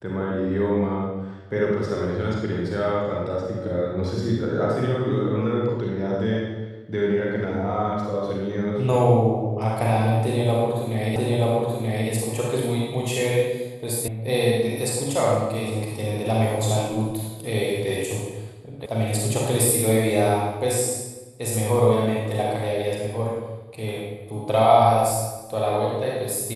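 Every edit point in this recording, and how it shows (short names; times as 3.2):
11.16 repeat of the last 0.93 s
14.08 sound cut off
18.86 sound cut off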